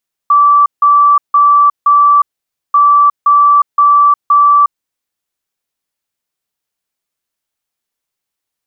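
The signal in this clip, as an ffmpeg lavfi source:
-f lavfi -i "aevalsrc='0.631*sin(2*PI*1160*t)*clip(min(mod(mod(t,2.44),0.52),0.36-mod(mod(t,2.44),0.52))/0.005,0,1)*lt(mod(t,2.44),2.08)':d=4.88:s=44100"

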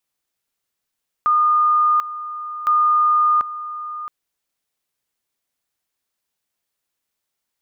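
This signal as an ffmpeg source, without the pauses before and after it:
-f lavfi -i "aevalsrc='pow(10,(-12.5-14*gte(mod(t,1.41),0.74))/20)*sin(2*PI*1220*t)':d=2.82:s=44100"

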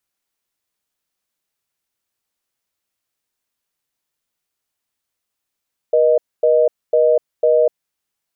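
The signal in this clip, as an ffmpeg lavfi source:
-f lavfi -i "aevalsrc='0.224*(sin(2*PI*480*t)+sin(2*PI*620*t))*clip(min(mod(t,0.5),0.25-mod(t,0.5))/0.005,0,1)':d=1.98:s=44100"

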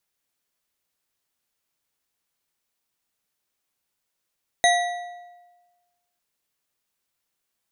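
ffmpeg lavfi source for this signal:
-f lavfi -i "aevalsrc='0.178*pow(10,-3*t/1.31)*sin(2*PI*706*t)+0.126*pow(10,-3*t/0.966)*sin(2*PI*1946.4*t)+0.0891*pow(10,-3*t/0.79)*sin(2*PI*3815.2*t)+0.0631*pow(10,-3*t/0.679)*sin(2*PI*6306.7*t)+0.0447*pow(10,-3*t/0.602)*sin(2*PI*9418*t)':d=1.55:s=44100"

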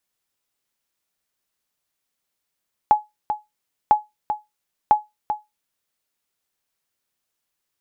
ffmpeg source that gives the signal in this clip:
-f lavfi -i "aevalsrc='0.531*(sin(2*PI*845*mod(t,1))*exp(-6.91*mod(t,1)/0.19)+0.335*sin(2*PI*845*max(mod(t,1)-0.39,0))*exp(-6.91*max(mod(t,1)-0.39,0)/0.19))':d=3:s=44100"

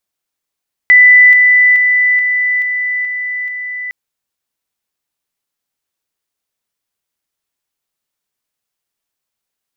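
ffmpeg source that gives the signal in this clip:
-f lavfi -i "aevalsrc='pow(10,(-2-3*floor(t/0.43))/20)*sin(2*PI*1990*t)':d=3.01:s=44100"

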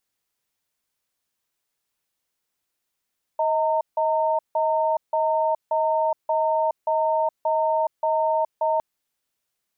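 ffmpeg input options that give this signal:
-f lavfi -i "aevalsrc='0.0841*(sin(2*PI*632*t)+sin(2*PI*914*t))*clip(min(mod(t,0.58),0.42-mod(t,0.58))/0.005,0,1)':d=5.41:s=44100"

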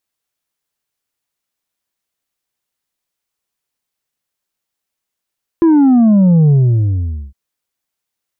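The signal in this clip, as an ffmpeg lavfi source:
-f lavfi -i "aevalsrc='0.473*clip((1.71-t)/0.83,0,1)*tanh(1.58*sin(2*PI*340*1.71/log(65/340)*(exp(log(65/340)*t/1.71)-1)))/tanh(1.58)':d=1.71:s=44100"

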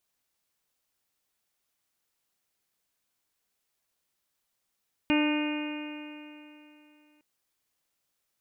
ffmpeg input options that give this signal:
-f lavfi -i "aevalsrc='0.0841*pow(10,-3*t/3)*sin(2*PI*298.18*t)+0.0237*pow(10,-3*t/3)*sin(2*PI*597.43*t)+0.0211*pow(10,-3*t/3)*sin(2*PI*898.81*t)+0.00944*pow(10,-3*t/3)*sin(2*PI*1203.39*t)+0.0126*pow(10,-3*t/3)*sin(2*PI*1512.18*t)+0.0106*pow(10,-3*t/3)*sin(2*PI*1826.21*t)+0.0158*pow(10,-3*t/3)*sin(2*PI*2146.45*t)+0.0316*pow(10,-3*t/3)*sin(2*PI*2473.85*t)+0.0237*pow(10,-3*t/3)*sin(2*PI*2809.32*t)':d=2.11:s=44100"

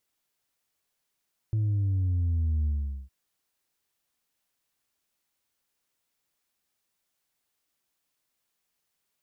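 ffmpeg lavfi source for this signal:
-f lavfi -i "aevalsrc='0.0668*clip((1.56-t)/0.43,0,1)*tanh(1.26*sin(2*PI*110*1.56/log(65/110)*(exp(log(65/110)*t/1.56)-1)))/tanh(1.26)':d=1.56:s=44100"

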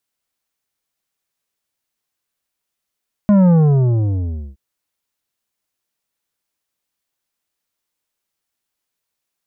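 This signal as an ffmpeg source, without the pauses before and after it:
-f lavfi -i "aevalsrc='0.355*clip((1.27-t)/1.08,0,1)*tanh(2.99*sin(2*PI*210*1.27/log(65/210)*(exp(log(65/210)*t/1.27)-1)))/tanh(2.99)':d=1.27:s=44100"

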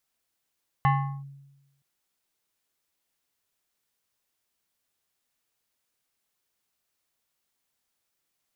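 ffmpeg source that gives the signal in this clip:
-f lavfi -i "aevalsrc='0.158*pow(10,-3*t/1.04)*sin(2*PI*139*t+1.2*clip(1-t/0.39,0,1)*sin(2*PI*6.85*139*t))':d=0.97:s=44100"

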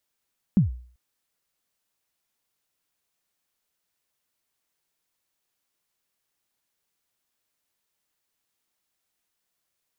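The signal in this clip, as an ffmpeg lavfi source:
-f lavfi -i "aevalsrc='0.266*pow(10,-3*t/0.48)*sin(2*PI*(220*0.131/log(61/220)*(exp(log(61/220)*min(t,0.131)/0.131)-1)+61*max(t-0.131,0)))':d=0.39:s=44100"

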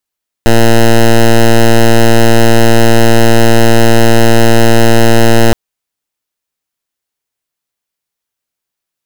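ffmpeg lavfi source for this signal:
-f lavfi -i "aevalsrc='0.631*(2*lt(mod(115*t,1),0.1)-1)':d=5.07:s=44100"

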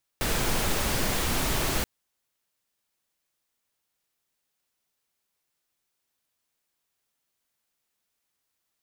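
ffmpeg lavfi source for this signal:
-f lavfi -i "anoisesrc=c=pink:a=0.257:d=1.63:r=44100:seed=1"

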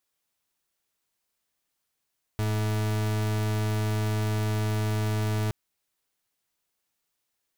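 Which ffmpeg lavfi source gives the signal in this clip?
-f lavfi -i "aevalsrc='0.0473*(2*lt(mod(107*t,1),0.4)-1)':d=3.12:s=44100"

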